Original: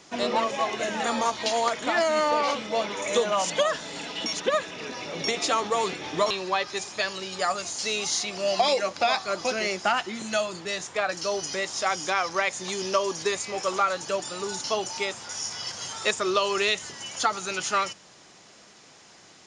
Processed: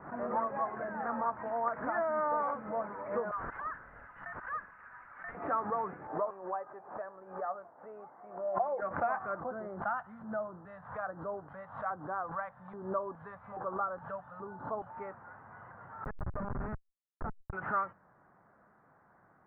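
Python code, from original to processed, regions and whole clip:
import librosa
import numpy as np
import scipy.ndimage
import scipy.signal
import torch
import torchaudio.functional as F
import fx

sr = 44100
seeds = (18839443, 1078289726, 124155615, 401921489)

y = fx.chain(x, sr, fx.highpass(hz=1200.0, slope=24),
    fx.resample_bad(factor=6, down='none', up='zero_stuff'), at=(3.31, 5.35))
y = fx.chain(y, sr, fx.bandpass_q(hz=610.0, q=1.3),
    fx.pre_swell(db_per_s=150.0), at=(6.07, 8.82))
y = fx.chain(y, sr, fx.high_shelf_res(hz=2900.0, db=8.5, q=3.0),
    fx.filter_lfo_notch(shape='square', hz=1.2, low_hz=350.0, high_hz=2600.0, q=0.72), at=(9.4, 14.89))
y = fx.chain(y, sr, fx.highpass(hz=450.0, slope=6),
    fx.schmitt(flips_db=-21.0), at=(16.04, 17.53))
y = scipy.signal.sosfilt(scipy.signal.butter(8, 1600.0, 'lowpass', fs=sr, output='sos'), y)
y = fx.peak_eq(y, sr, hz=370.0, db=-8.0, octaves=1.3)
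y = fx.pre_swell(y, sr, db_per_s=110.0)
y = y * 10.0 ** (-5.5 / 20.0)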